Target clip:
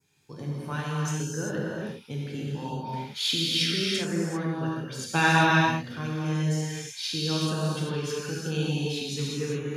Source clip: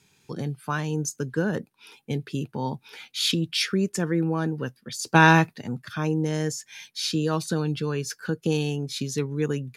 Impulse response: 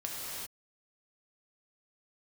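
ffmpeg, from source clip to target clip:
-filter_complex "[0:a]adynamicequalizer=threshold=0.00794:dfrequency=3300:dqfactor=1.2:tfrequency=3300:tqfactor=1.2:attack=5:release=100:ratio=0.375:range=3:mode=boostabove:tftype=bell[link_01];[1:a]atrim=start_sample=2205[link_02];[link_01][link_02]afir=irnorm=-1:irlink=0,volume=-6.5dB"

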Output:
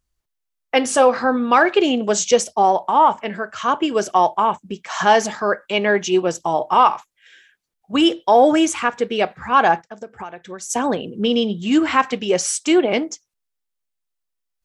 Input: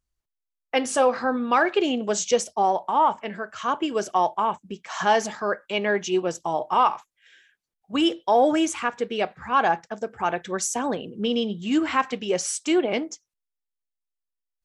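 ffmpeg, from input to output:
ffmpeg -i in.wav -filter_complex "[0:a]asettb=1/sr,asplit=3[link_01][link_02][link_03];[link_01]atrim=end=3.484[link_04];[link_02]atrim=start=3.48:end=3.98,asetpts=PTS-STARTPTS,afade=type=in:duration=0.004:curve=qsin,afade=type=out:start_time=0.496:duration=0.004:curve=qsin,lowpass=10000[link_05];[link_03]atrim=start=3.976[link_06];[link_04][link_05]acrossfade=duration=0.004:curve1=hsin:curve2=qsin[link_07];[link_07][link_06]acrossfade=duration=0.004:curve1=qsin:curve2=hsin,asplit=3[link_08][link_09][link_10];[link_08]afade=type=out:start_time=9.81:duration=0.02[link_11];[link_09]acompressor=threshold=-36dB:ratio=8,afade=type=in:start_time=9.81:duration=0.02,afade=type=out:start_time=10.69:duration=0.02[link_12];[link_10]afade=type=in:start_time=10.69:duration=0.02[link_13];[link_11][link_12][link_13]amix=inputs=3:normalize=0,volume=6dB" out.wav

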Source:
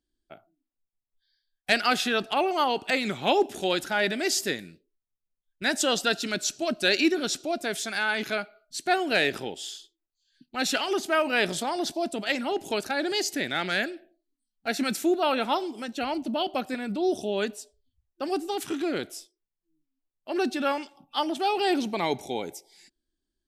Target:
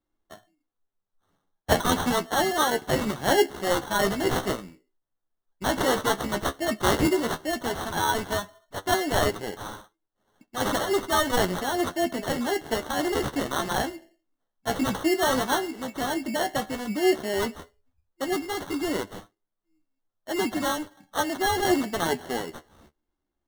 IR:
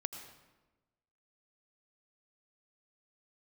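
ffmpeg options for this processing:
-af "acrusher=samples=18:mix=1:aa=0.000001,flanger=delay=9.5:depth=6.3:regen=37:speed=0.1:shape=sinusoidal,volume=5dB"

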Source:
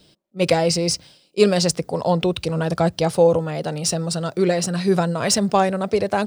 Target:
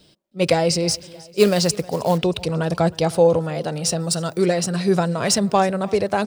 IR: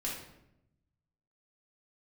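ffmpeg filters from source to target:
-filter_complex "[0:a]asettb=1/sr,asplit=3[link_01][link_02][link_03];[link_01]atrim=end=4.004[link_04];[link_02]atrim=start=4:end=4.42,asetpts=PTS-STARTPTS,afade=type=in:duration=0.004:curve=qsin,afade=type=out:start_time=0.416:duration=0.004:curve=qsin,highshelf=frequency=7500:gain=11[link_05];[link_03]atrim=start=4.416[link_06];[link_04][link_05]acrossfade=duration=0.004:curve1=hsin:curve2=qsin[link_07];[link_07][link_06]acrossfade=duration=0.004:curve1=qsin:curve2=hsin,aecho=1:1:314|628|942|1256:0.0794|0.0413|0.0215|0.0112,asettb=1/sr,asplit=3[link_08][link_09][link_10];[link_08]atrim=end=0.894[link_11];[link_09]atrim=start=0.89:end=2.18,asetpts=PTS-STARTPTS,afade=type=in:duration=0.004:curve=qsin,afade=type=out:start_time=1.286:duration=0.004:curve=qsin,acrusher=bits=5:mode=log:mix=0:aa=0.000001[link_12];[link_10]atrim=start=2.176[link_13];[link_11][link_12]acrossfade=duration=0.004:curve1=hsin:curve2=qsin[link_14];[link_14][link_13]acrossfade=duration=0.004:curve1=qsin:curve2=hsin"

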